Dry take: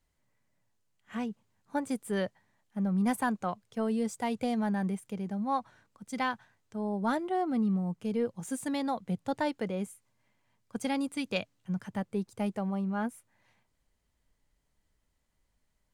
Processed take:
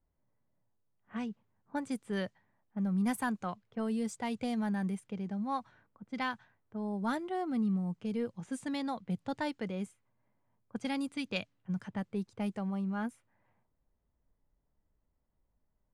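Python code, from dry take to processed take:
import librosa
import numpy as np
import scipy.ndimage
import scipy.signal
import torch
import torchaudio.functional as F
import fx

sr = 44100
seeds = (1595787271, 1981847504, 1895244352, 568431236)

y = fx.dynamic_eq(x, sr, hz=590.0, q=0.83, threshold_db=-41.0, ratio=4.0, max_db=-5)
y = fx.env_lowpass(y, sr, base_hz=1000.0, full_db=-29.0)
y = y * 10.0 ** (-1.5 / 20.0)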